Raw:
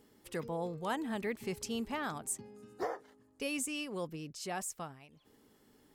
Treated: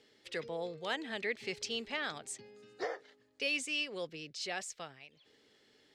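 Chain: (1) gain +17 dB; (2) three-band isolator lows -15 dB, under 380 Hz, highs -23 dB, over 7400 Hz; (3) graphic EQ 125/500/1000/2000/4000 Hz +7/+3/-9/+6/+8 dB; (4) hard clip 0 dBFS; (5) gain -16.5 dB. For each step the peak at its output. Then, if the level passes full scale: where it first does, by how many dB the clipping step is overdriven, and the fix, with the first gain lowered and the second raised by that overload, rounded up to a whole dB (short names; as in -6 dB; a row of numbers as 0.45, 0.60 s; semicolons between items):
-7.5, -5.5, -5.0, -5.0, -21.5 dBFS; no overload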